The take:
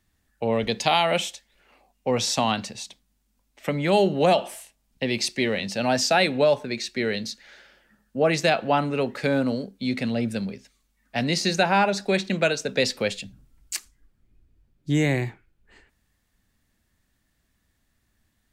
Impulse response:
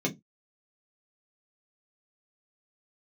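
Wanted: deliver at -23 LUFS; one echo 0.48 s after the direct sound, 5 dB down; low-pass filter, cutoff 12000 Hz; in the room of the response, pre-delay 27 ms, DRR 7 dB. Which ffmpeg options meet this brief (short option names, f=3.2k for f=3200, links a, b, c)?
-filter_complex "[0:a]lowpass=12k,aecho=1:1:480:0.562,asplit=2[a][b];[1:a]atrim=start_sample=2205,adelay=27[c];[b][c]afir=irnorm=-1:irlink=0,volume=-14.5dB[d];[a][d]amix=inputs=2:normalize=0,volume=-1.5dB"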